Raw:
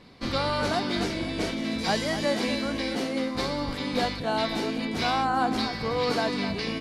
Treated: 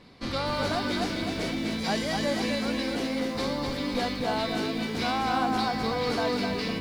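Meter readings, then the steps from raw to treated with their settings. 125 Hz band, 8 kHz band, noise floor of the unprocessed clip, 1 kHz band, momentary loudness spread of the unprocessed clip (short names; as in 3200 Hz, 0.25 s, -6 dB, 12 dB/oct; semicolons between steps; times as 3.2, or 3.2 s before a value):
-1.0 dB, -0.5 dB, -34 dBFS, -1.0 dB, 4 LU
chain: in parallel at -3.5 dB: soft clip -28 dBFS, distortion -10 dB; on the sum: lo-fi delay 0.254 s, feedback 35%, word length 8-bit, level -4 dB; gain -5.5 dB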